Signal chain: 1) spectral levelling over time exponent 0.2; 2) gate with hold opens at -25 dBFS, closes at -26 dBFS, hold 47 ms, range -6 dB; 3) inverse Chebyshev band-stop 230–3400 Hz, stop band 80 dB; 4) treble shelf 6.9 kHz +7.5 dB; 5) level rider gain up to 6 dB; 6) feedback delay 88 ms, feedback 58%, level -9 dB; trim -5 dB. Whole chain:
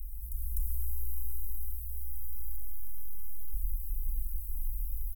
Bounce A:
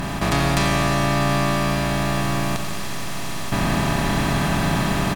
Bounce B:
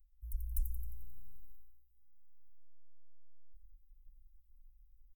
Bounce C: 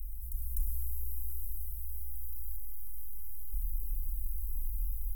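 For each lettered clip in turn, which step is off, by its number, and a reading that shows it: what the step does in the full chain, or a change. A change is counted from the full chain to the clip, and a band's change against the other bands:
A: 3, momentary loudness spread change +2 LU; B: 1, crest factor change +11.0 dB; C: 6, echo-to-direct -7.0 dB to none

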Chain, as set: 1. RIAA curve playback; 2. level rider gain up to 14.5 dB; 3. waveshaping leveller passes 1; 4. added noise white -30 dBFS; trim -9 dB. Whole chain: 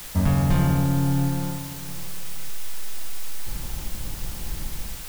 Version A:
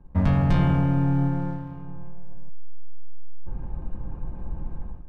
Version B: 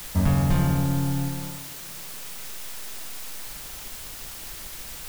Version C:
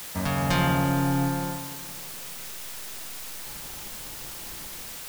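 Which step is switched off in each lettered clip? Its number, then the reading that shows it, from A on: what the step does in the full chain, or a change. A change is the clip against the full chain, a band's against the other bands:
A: 4, 2 kHz band -2.5 dB; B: 2, momentary loudness spread change -1 LU; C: 1, 125 Hz band -8.0 dB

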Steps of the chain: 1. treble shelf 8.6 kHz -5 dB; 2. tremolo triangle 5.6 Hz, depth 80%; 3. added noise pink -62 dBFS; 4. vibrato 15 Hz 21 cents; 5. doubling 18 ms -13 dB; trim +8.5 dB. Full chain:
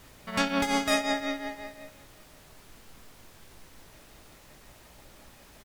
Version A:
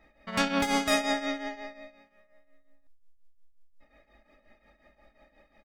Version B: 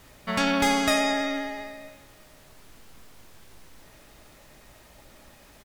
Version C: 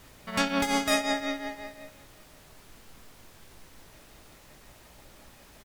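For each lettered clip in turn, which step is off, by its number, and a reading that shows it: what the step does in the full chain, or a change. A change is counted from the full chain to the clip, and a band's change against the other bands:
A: 3, momentary loudness spread change -2 LU; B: 2, crest factor change -2.5 dB; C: 1, 8 kHz band +2.0 dB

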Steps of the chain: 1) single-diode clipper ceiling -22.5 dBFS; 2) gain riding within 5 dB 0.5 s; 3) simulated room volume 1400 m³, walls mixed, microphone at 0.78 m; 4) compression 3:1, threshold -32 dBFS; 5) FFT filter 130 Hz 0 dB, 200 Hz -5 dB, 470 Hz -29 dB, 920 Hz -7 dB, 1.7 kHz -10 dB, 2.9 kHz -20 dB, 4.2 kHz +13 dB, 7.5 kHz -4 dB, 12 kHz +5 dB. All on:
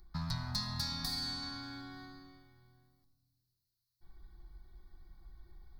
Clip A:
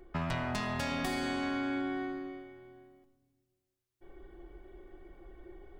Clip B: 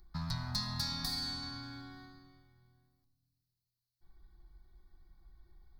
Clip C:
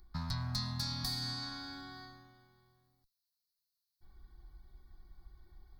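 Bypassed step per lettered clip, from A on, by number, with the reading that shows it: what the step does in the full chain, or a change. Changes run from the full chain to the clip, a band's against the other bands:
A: 5, 4 kHz band -16.0 dB; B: 2, momentary loudness spread change +1 LU; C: 3, momentary loudness spread change -2 LU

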